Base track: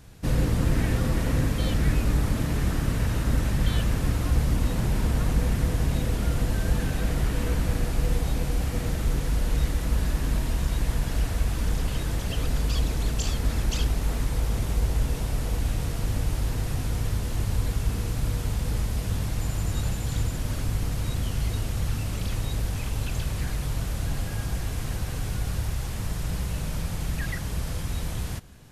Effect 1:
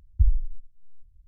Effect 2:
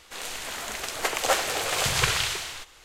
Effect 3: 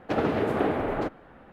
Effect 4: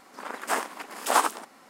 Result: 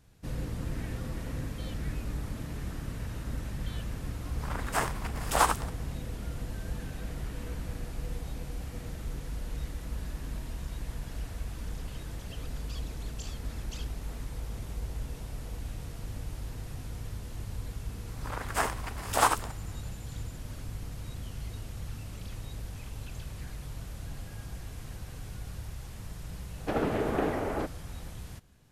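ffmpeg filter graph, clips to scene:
ffmpeg -i bed.wav -i cue0.wav -i cue1.wav -i cue2.wav -i cue3.wav -filter_complex "[4:a]asplit=2[link_01][link_02];[0:a]volume=-12dB[link_03];[link_01]atrim=end=1.69,asetpts=PTS-STARTPTS,volume=-2.5dB,afade=type=in:duration=0.004:curve=hsin,afade=type=out:start_time=1.686:duration=0.004:curve=hsin,adelay=187425S[link_04];[link_02]atrim=end=1.69,asetpts=PTS-STARTPTS,volume=-2dB,afade=type=in:duration=0.004:curve=hsin,afade=type=out:start_time=1.686:duration=0.004:curve=hsin,adelay=18070[link_05];[3:a]atrim=end=1.52,asetpts=PTS-STARTPTS,volume=-4dB,afade=type=in:duration=0.004:curve=hsin,afade=type=out:start_time=1.516:duration=0.004:curve=hsin,adelay=26580[link_06];[link_03][link_04][link_05][link_06]amix=inputs=4:normalize=0" out.wav

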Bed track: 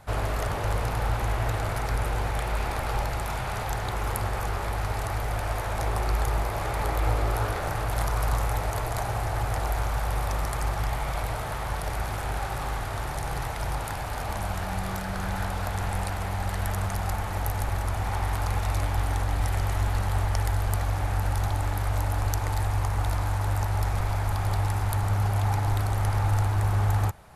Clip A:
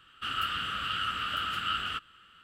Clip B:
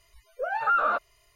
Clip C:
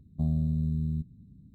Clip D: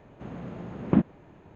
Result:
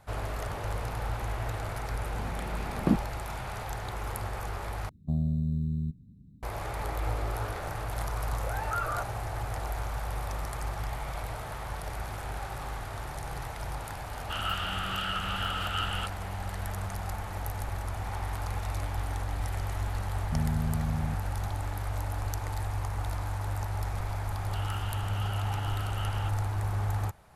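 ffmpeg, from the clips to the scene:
ffmpeg -i bed.wav -i cue0.wav -i cue1.wav -i cue2.wav -i cue3.wav -filter_complex "[3:a]asplit=2[link_01][link_02];[1:a]asplit=2[link_03][link_04];[0:a]volume=-6.5dB[link_05];[2:a]asplit=2[link_06][link_07];[link_07]adelay=17,volume=-2dB[link_08];[link_06][link_08]amix=inputs=2:normalize=0[link_09];[link_05]asplit=2[link_10][link_11];[link_10]atrim=end=4.894[link_12];[link_01]atrim=end=1.54,asetpts=PTS-STARTPTS,volume=-1dB[link_13];[link_11]atrim=start=6.426[link_14];[4:a]atrim=end=1.55,asetpts=PTS-STARTPTS,volume=-3.5dB,afade=type=in:duration=0.004:curve=hsin,afade=type=out:start_time=1.546:duration=0.004:curve=hsin,adelay=1940[link_15];[link_09]atrim=end=1.35,asetpts=PTS-STARTPTS,volume=-11dB,afade=type=in:duration=0.004:curve=hsin,afade=type=out:start_time=1.346:duration=0.004:curve=hsin,adelay=8040[link_16];[link_03]atrim=end=2.43,asetpts=PTS-STARTPTS,volume=-1.5dB,afade=type=in:duration=0.004:curve=hsin,afade=type=out:start_time=2.426:duration=0.004:curve=hsin,adelay=14080[link_17];[link_02]atrim=end=1.54,asetpts=PTS-STARTPTS,volume=-3dB,afade=type=in:duration=0.004:curve=hsin,afade=type=out:start_time=1.536:duration=0.004:curve=hsin,adelay=20130[link_18];[link_04]atrim=end=2.43,asetpts=PTS-STARTPTS,volume=-11.5dB,afade=type=in:duration=0.004:curve=hsin,afade=type=out:start_time=2.426:duration=0.004:curve=hsin,adelay=24310[link_19];[link_12][link_13]acrossfade=duration=0.004:curve1=hsin:curve2=hsin[link_20];[link_20][link_14]acrossfade=duration=0.004:curve1=hsin:curve2=hsin[link_21];[link_21][link_15][link_16][link_17][link_18][link_19]amix=inputs=6:normalize=0" out.wav

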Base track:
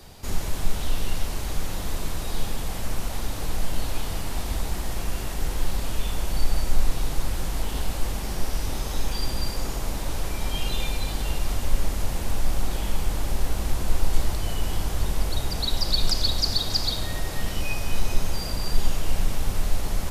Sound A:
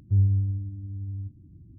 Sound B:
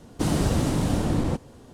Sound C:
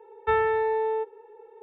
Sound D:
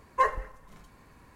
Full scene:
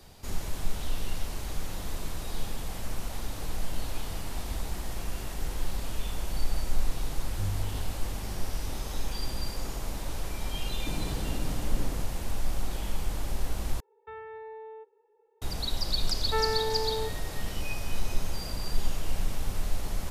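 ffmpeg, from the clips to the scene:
ffmpeg -i bed.wav -i cue0.wav -i cue1.wav -i cue2.wav -filter_complex "[3:a]asplit=2[link_01][link_02];[0:a]volume=-6dB[link_03];[link_01]alimiter=limit=-18.5dB:level=0:latency=1:release=71[link_04];[link_03]asplit=2[link_05][link_06];[link_05]atrim=end=13.804[link_07];[link_04]atrim=end=1.62,asetpts=PTS-STARTPTS,volume=-17.5dB[link_08];[link_06]atrim=start=15.416[link_09];[1:a]atrim=end=1.78,asetpts=PTS-STARTPTS,volume=-13dB,afade=type=in:duration=0.004:curve=hsin,afade=type=out:start_time=1.776:duration=0.004:curve=hsin,adelay=7270[link_10];[2:a]atrim=end=1.73,asetpts=PTS-STARTPTS,volume=-13.5dB,afade=type=in:duration=0.004:curve=hsin,afade=type=out:start_time=1.726:duration=0.004:curve=hsin,adelay=470106S[link_11];[link_02]atrim=end=1.62,asetpts=PTS-STARTPTS,volume=-6dB,afade=type=in:duration=0.004:curve=hsin,afade=type=out:start_time=1.616:duration=0.004:curve=hsin,adelay=16050[link_12];[link_07][link_08]acrossfade=duration=0.004:curve1=hsin:curve2=hsin[link_13];[link_13][link_09]acrossfade=duration=0.004:curve1=hsin:curve2=hsin[link_14];[link_14][link_10][link_11][link_12]amix=inputs=4:normalize=0" out.wav

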